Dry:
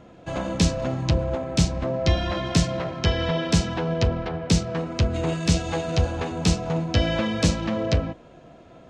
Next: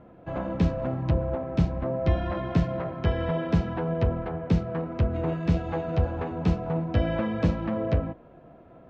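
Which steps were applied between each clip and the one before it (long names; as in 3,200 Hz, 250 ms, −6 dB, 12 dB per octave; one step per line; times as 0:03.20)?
low-pass filter 1,600 Hz 12 dB per octave
level −2.5 dB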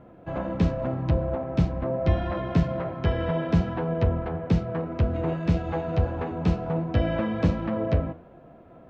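flanger 1.3 Hz, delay 6.9 ms, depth 6.8 ms, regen +86%
level +5.5 dB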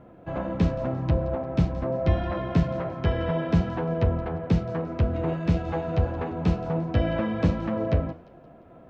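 delay with a high-pass on its return 175 ms, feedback 43%, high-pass 3,800 Hz, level −13 dB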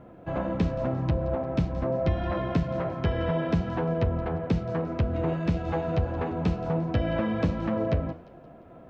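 downward compressor 3 to 1, threshold −23 dBFS, peak gain reduction 6.5 dB
level +1 dB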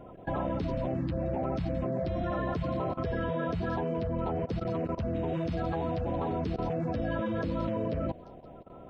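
spectral magnitudes quantised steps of 30 dB
output level in coarse steps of 17 dB
level +3 dB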